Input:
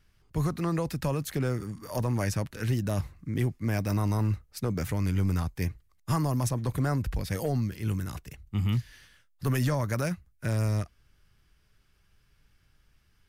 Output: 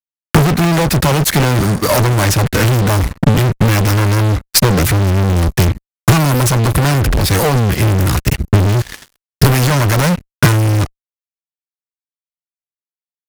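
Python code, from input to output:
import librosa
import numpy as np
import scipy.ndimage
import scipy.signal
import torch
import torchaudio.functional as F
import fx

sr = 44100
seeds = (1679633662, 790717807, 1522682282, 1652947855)

y = fx.fuzz(x, sr, gain_db=48.0, gate_db=-50.0)
y = fx.transient(y, sr, attack_db=8, sustain_db=-9)
y = F.gain(torch.from_numpy(y), 2.0).numpy()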